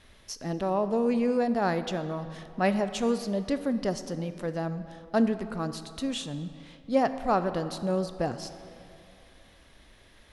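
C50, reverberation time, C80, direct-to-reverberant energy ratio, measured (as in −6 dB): 11.5 dB, 2.7 s, 12.0 dB, 10.5 dB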